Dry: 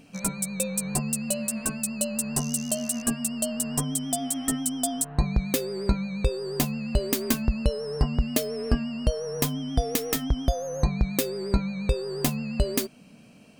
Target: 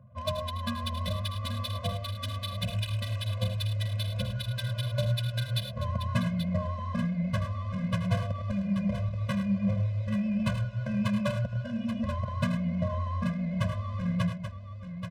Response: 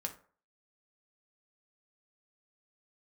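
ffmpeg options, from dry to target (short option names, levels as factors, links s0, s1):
-filter_complex "[0:a]highshelf=f=6400:g=-12,acrossover=split=350[s0][s1];[s1]acontrast=32[s2];[s0][s2]amix=inputs=2:normalize=0,asoftclip=type=tanh:threshold=0.168,highpass=f=200:w=0.5412,highpass=f=200:w=1.3066,equalizer=f=900:t=q:w=4:g=-5,equalizer=f=1300:t=q:w=4:g=7,equalizer=f=2300:t=q:w=4:g=3,equalizer=f=4400:t=q:w=4:g=-4,lowpass=f=9800:w=0.5412,lowpass=f=9800:w=1.3066,asetrate=22050,aresample=44100,atempo=2,adynamicsmooth=sensitivity=8:basefreq=500,asetrate=39690,aresample=44100,aecho=1:1:79|105|832:0.266|0.299|0.376,afftfilt=real='re*eq(mod(floor(b*sr/1024/240),2),0)':imag='im*eq(mod(floor(b*sr/1024/240),2),0)':win_size=1024:overlap=0.75"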